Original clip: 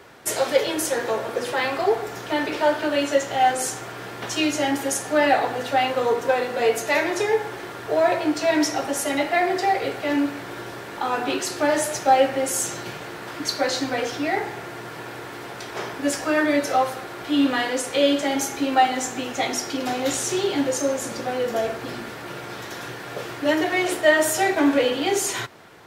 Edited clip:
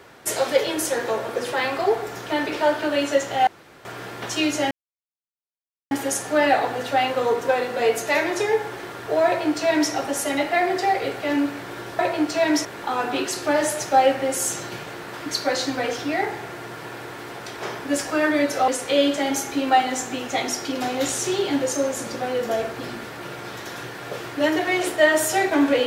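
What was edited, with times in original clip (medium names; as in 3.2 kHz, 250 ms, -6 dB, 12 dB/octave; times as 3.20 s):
3.47–3.85 s: room tone
4.71 s: insert silence 1.20 s
8.06–8.72 s: copy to 10.79 s
16.82–17.73 s: delete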